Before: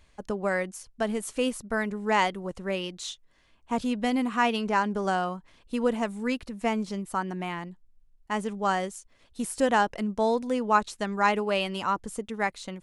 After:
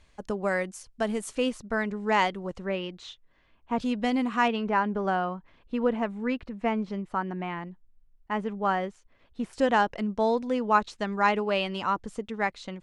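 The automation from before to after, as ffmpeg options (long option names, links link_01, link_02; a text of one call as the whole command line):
ffmpeg -i in.wav -af "asetnsamples=nb_out_samples=441:pad=0,asendcmd='1.35 lowpass f 5900;2.66 lowpass f 2900;3.8 lowpass f 6200;4.48 lowpass f 2600;9.53 lowpass f 5000',lowpass=9900" out.wav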